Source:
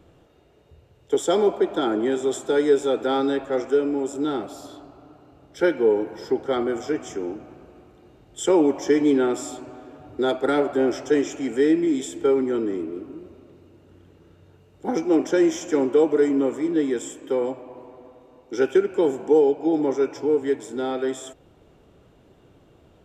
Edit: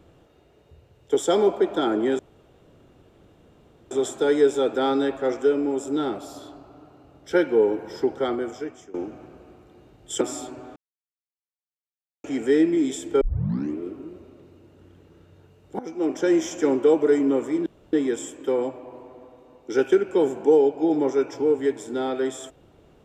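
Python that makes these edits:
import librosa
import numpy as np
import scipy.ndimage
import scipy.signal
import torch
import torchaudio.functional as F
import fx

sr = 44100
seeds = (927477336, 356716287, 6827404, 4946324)

y = fx.edit(x, sr, fx.insert_room_tone(at_s=2.19, length_s=1.72),
    fx.fade_out_to(start_s=6.41, length_s=0.81, floor_db=-18.5),
    fx.cut(start_s=8.49, length_s=0.82),
    fx.silence(start_s=9.86, length_s=1.48),
    fx.tape_start(start_s=12.31, length_s=0.56),
    fx.fade_in_from(start_s=14.89, length_s=0.82, curve='qsin', floor_db=-17.0),
    fx.insert_room_tone(at_s=16.76, length_s=0.27), tone=tone)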